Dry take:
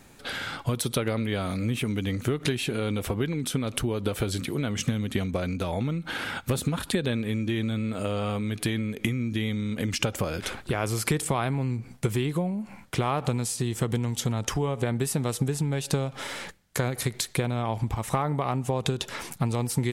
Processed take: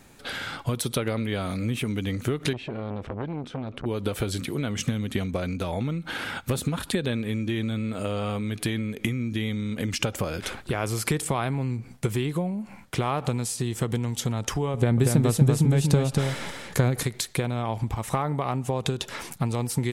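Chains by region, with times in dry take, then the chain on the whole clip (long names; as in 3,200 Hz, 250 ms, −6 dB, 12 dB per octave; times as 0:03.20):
0:02.53–0:03.86: head-to-tape spacing loss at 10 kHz 30 dB + saturating transformer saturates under 750 Hz
0:14.74–0:17.03: low-shelf EQ 350 Hz +8 dB + single-tap delay 237 ms −4 dB
whole clip: no processing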